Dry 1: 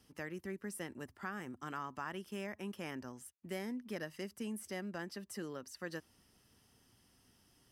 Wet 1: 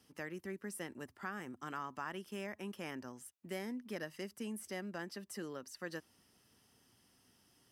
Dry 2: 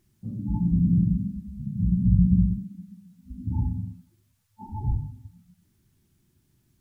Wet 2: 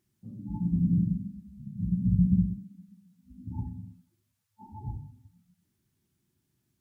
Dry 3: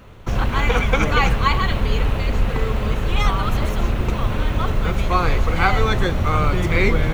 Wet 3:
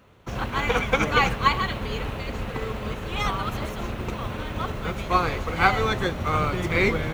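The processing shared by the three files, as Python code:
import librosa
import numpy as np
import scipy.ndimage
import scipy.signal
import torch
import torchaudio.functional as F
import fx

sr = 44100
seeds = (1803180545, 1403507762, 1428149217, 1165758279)

y = fx.highpass(x, sr, hz=130.0, slope=6)
y = fx.upward_expand(y, sr, threshold_db=-32.0, expansion=1.5)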